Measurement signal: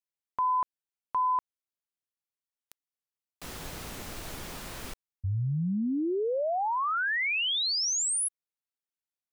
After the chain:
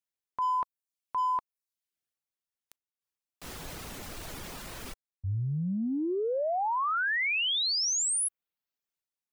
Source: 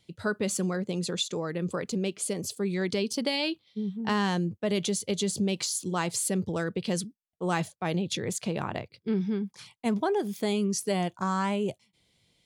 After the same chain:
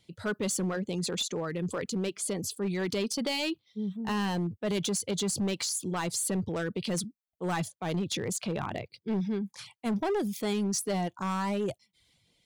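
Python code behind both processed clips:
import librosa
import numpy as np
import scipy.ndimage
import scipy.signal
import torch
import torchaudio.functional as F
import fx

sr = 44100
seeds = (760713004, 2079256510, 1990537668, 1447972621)

y = fx.transient(x, sr, attack_db=-3, sustain_db=4)
y = fx.dereverb_blind(y, sr, rt60_s=0.55)
y = np.clip(y, -10.0 ** (-25.0 / 20.0), 10.0 ** (-25.0 / 20.0))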